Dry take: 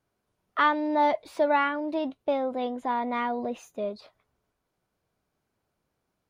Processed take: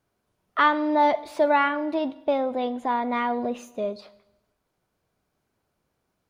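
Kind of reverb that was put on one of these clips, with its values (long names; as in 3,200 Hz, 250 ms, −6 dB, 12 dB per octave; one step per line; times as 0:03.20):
four-comb reverb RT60 0.89 s, combs from 33 ms, DRR 16.5 dB
level +3 dB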